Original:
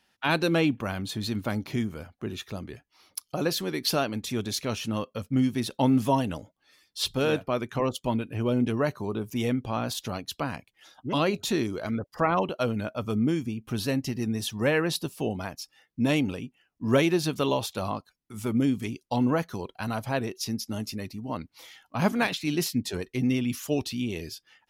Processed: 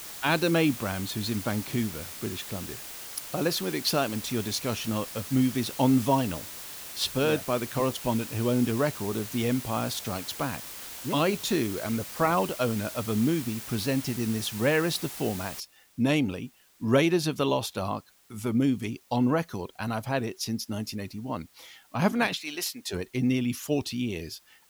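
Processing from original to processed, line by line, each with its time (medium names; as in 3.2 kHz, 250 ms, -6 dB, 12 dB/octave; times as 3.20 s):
15.60 s: noise floor step -41 dB -62 dB
22.40–22.89 s: high-pass 610 Hz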